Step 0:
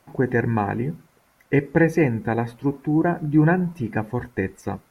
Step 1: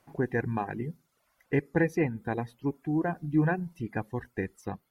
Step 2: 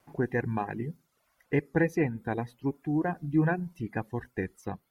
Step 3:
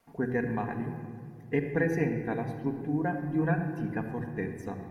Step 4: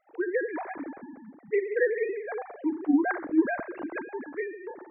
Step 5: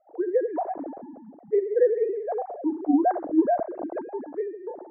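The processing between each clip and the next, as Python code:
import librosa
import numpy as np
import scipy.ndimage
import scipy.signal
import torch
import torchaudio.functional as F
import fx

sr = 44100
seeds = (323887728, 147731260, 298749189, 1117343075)

y1 = fx.dereverb_blind(x, sr, rt60_s=0.75)
y1 = y1 * 10.0 ** (-7.5 / 20.0)
y2 = fx.vibrato(y1, sr, rate_hz=3.3, depth_cents=40.0)
y3 = fx.room_shoebox(y2, sr, seeds[0], volume_m3=3900.0, walls='mixed', distance_m=1.7)
y3 = y3 * 10.0 ** (-3.0 / 20.0)
y4 = fx.sine_speech(y3, sr)
y4 = y4 * 10.0 ** (1.5 / 20.0)
y5 = fx.lowpass_res(y4, sr, hz=680.0, q=3.5)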